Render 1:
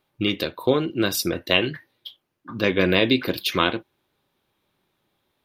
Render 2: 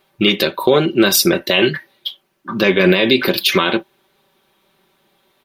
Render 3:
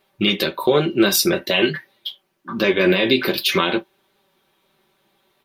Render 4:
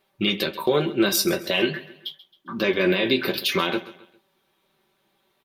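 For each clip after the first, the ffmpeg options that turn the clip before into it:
-af "lowshelf=f=160:g=-9,aecho=1:1:5.2:0.59,alimiter=level_in=4.22:limit=0.891:release=50:level=0:latency=1,volume=0.891"
-af "flanger=delay=9.5:depth=5.7:regen=-35:speed=0.49:shape=triangular"
-af "aecho=1:1:134|268|402:0.141|0.0551|0.0215,volume=0.596"

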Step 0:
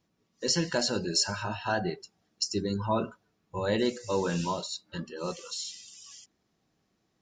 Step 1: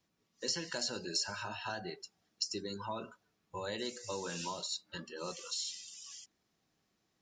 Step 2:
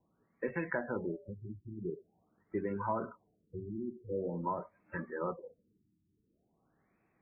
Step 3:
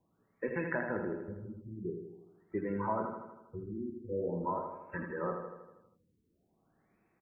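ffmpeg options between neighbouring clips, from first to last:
-filter_complex "[0:a]tiltshelf=f=970:g=-3,acrossover=split=250|4400[s0][s1][s2];[s0]acompressor=threshold=0.00398:ratio=4[s3];[s1]acompressor=threshold=0.0178:ratio=4[s4];[s2]acompressor=threshold=0.02:ratio=4[s5];[s3][s4][s5]amix=inputs=3:normalize=0,volume=0.668"
-af "afftfilt=real='re*lt(b*sr/1024,370*pow(2700/370,0.5+0.5*sin(2*PI*0.46*pts/sr)))':imag='im*lt(b*sr/1024,370*pow(2700/370,0.5+0.5*sin(2*PI*0.46*pts/sr)))':win_size=1024:overlap=0.75,volume=2"
-af "aecho=1:1:80|160|240|320|400|480|560|640:0.501|0.296|0.174|0.103|0.0607|0.0358|0.0211|0.0125"

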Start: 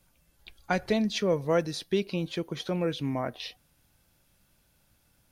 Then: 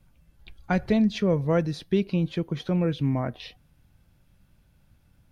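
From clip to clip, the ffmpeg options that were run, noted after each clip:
-af "bass=f=250:g=10,treble=f=4000:g=-8"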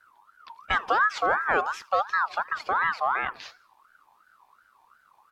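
-filter_complex "[0:a]asplit=2[s0][s1];[s1]volume=10,asoftclip=hard,volume=0.1,volume=0.251[s2];[s0][s2]amix=inputs=2:normalize=0,aecho=1:1:81|162|243:0.0708|0.0333|0.0156,aeval=exprs='val(0)*sin(2*PI*1200*n/s+1200*0.25/2.8*sin(2*PI*2.8*n/s))':c=same"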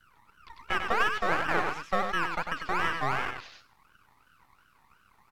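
-filter_complex "[0:a]aecho=1:1:97:0.501,acrossover=split=2500[s0][s1];[s1]acompressor=threshold=0.00316:ratio=4:attack=1:release=60[s2];[s0][s2]amix=inputs=2:normalize=0,acrossover=split=2200[s3][s4];[s3]aeval=exprs='max(val(0),0)':c=same[s5];[s5][s4]amix=inputs=2:normalize=0"

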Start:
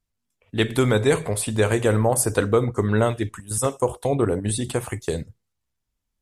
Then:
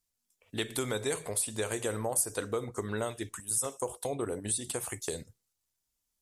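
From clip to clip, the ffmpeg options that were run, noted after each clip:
-af "bass=f=250:g=-7,treble=f=4000:g=11,acompressor=threshold=0.0282:ratio=2,volume=0.596"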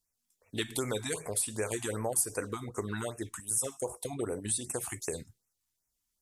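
-af "afftfilt=real='re*(1-between(b*sr/1024,450*pow(3900/450,0.5+0.5*sin(2*PI*2.6*pts/sr))/1.41,450*pow(3900/450,0.5+0.5*sin(2*PI*2.6*pts/sr))*1.41))':imag='im*(1-between(b*sr/1024,450*pow(3900/450,0.5+0.5*sin(2*PI*2.6*pts/sr))/1.41,450*pow(3900/450,0.5+0.5*sin(2*PI*2.6*pts/sr))*1.41))':win_size=1024:overlap=0.75"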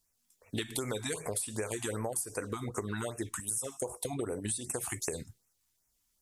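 -af "acompressor=threshold=0.0126:ratio=6,volume=2"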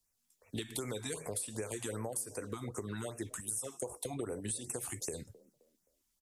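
-filter_complex "[0:a]acrossover=split=130|650|2700[s0][s1][s2][s3];[s1]asplit=4[s4][s5][s6][s7];[s5]adelay=262,afreqshift=34,volume=0.126[s8];[s6]adelay=524,afreqshift=68,volume=0.0427[s9];[s7]adelay=786,afreqshift=102,volume=0.0146[s10];[s4][s8][s9][s10]amix=inputs=4:normalize=0[s11];[s2]alimiter=level_in=4.22:limit=0.0631:level=0:latency=1:release=71,volume=0.237[s12];[s0][s11][s12][s3]amix=inputs=4:normalize=0,volume=0.668"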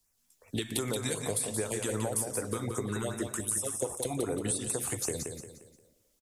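-af "aecho=1:1:176|352|528|704:0.501|0.185|0.0686|0.0254,volume=2"

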